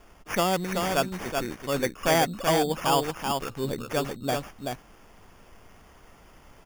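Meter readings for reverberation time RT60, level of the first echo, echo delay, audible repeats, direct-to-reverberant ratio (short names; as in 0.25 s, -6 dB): none, -4.5 dB, 0.381 s, 1, none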